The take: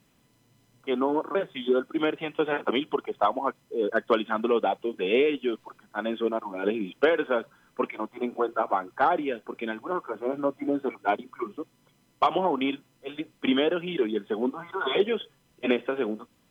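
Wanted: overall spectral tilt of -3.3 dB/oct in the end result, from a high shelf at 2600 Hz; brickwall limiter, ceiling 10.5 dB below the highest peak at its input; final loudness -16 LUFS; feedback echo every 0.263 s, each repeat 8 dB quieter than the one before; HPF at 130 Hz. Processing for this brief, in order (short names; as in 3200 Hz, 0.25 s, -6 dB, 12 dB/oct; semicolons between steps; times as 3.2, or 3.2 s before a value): HPF 130 Hz; high shelf 2600 Hz -5 dB; limiter -20.5 dBFS; feedback echo 0.263 s, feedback 40%, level -8 dB; gain +15.5 dB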